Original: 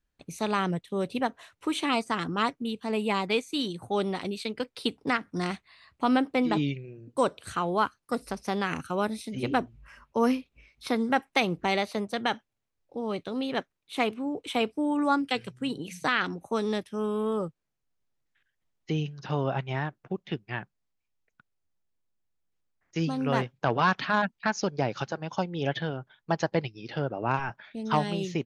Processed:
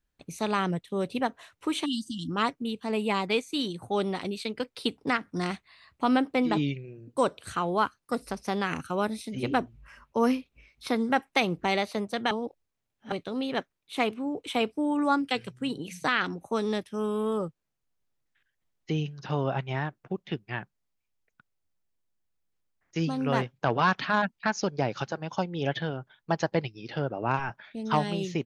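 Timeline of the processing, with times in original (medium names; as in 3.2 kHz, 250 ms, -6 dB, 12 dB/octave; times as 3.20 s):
1.85–2.30 s: spectral selection erased 330–2800 Hz
12.31–13.12 s: reverse
16.94–17.38 s: treble shelf 5.2 kHz +5 dB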